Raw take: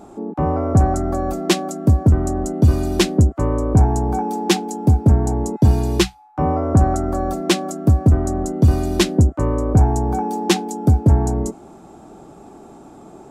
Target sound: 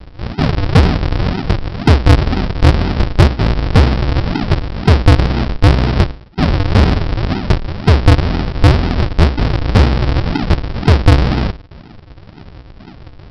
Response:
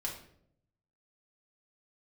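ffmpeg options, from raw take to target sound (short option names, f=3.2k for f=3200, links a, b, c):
-af "bandreject=f=60:t=h:w=6,bandreject=f=120:t=h:w=6,bandreject=f=180:t=h:w=6,bandreject=f=240:t=h:w=6,bandreject=f=300:t=h:w=6,bandreject=f=360:t=h:w=6,bandreject=f=420:t=h:w=6,aresample=11025,acrusher=samples=38:mix=1:aa=0.000001:lfo=1:lforange=38:lforate=2,aresample=44100,asoftclip=type=tanh:threshold=-8dB,volume=7dB"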